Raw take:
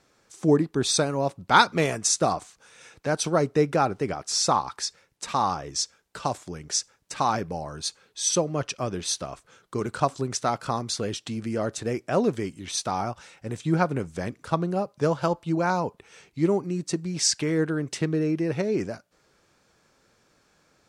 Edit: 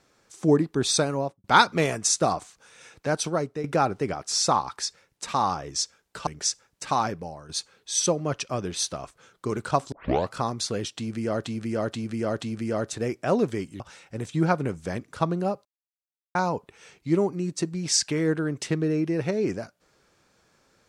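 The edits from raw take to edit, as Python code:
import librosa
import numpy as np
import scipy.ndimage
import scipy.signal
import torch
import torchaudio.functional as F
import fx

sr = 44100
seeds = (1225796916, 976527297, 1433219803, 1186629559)

y = fx.studio_fade_out(x, sr, start_s=1.13, length_s=0.31)
y = fx.edit(y, sr, fx.fade_out_to(start_s=3.14, length_s=0.5, floor_db=-13.0),
    fx.cut(start_s=6.27, length_s=0.29),
    fx.fade_out_to(start_s=7.24, length_s=0.54, floor_db=-10.0),
    fx.tape_start(start_s=10.21, length_s=0.4),
    fx.repeat(start_s=11.26, length_s=0.48, count=4),
    fx.cut(start_s=12.65, length_s=0.46),
    fx.silence(start_s=14.96, length_s=0.7), tone=tone)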